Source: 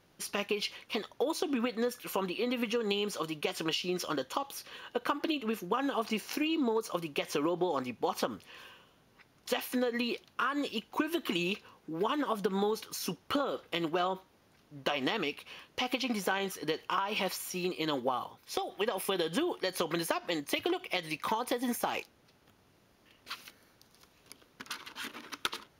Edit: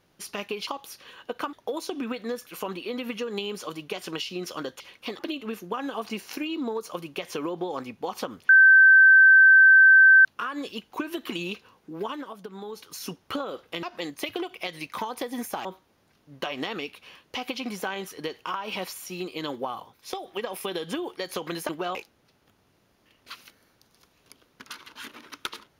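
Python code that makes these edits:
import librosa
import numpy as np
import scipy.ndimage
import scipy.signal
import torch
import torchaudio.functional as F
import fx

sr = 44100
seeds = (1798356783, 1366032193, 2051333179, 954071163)

y = fx.edit(x, sr, fx.swap(start_s=0.67, length_s=0.39, other_s=4.33, other_length_s=0.86),
    fx.bleep(start_s=8.49, length_s=1.76, hz=1550.0, db=-10.5),
    fx.fade_down_up(start_s=12.01, length_s=0.95, db=-9.0, fade_s=0.32),
    fx.swap(start_s=13.83, length_s=0.26, other_s=20.13, other_length_s=1.82), tone=tone)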